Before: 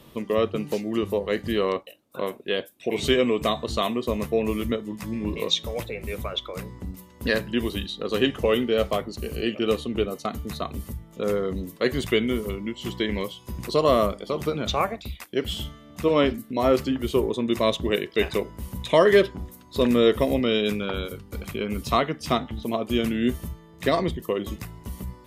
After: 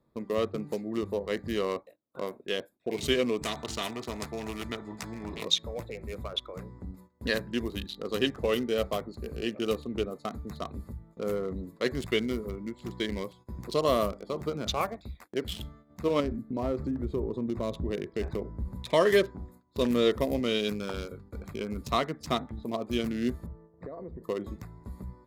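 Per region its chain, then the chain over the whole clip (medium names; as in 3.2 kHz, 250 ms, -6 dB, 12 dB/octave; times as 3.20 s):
3.42–5.45 s: distance through air 67 m + comb of notches 540 Hz + spectrum-flattening compressor 2:1
16.20–18.73 s: tilt EQ -2.5 dB/octave + compression 2.5:1, threshold -23 dBFS
23.46–24.24 s: boxcar filter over 14 samples + peaking EQ 490 Hz +8.5 dB 0.54 oct + compression 20:1, threshold -30 dBFS
whole clip: local Wiener filter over 15 samples; gate -46 dBFS, range -14 dB; treble shelf 4.5 kHz +10 dB; trim -6 dB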